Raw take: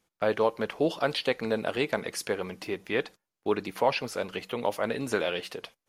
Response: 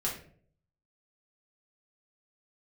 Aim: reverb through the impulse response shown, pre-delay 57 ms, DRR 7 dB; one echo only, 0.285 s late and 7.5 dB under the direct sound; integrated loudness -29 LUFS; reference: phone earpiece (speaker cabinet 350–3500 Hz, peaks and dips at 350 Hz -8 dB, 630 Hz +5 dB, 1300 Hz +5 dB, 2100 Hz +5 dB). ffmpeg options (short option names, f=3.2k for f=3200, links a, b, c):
-filter_complex "[0:a]aecho=1:1:285:0.422,asplit=2[a][b];[1:a]atrim=start_sample=2205,adelay=57[c];[b][c]afir=irnorm=-1:irlink=0,volume=-12dB[d];[a][d]amix=inputs=2:normalize=0,highpass=350,equalizer=f=350:t=q:w=4:g=-8,equalizer=f=630:t=q:w=4:g=5,equalizer=f=1.3k:t=q:w=4:g=5,equalizer=f=2.1k:t=q:w=4:g=5,lowpass=f=3.5k:w=0.5412,lowpass=f=3.5k:w=1.3066,volume=-0.5dB"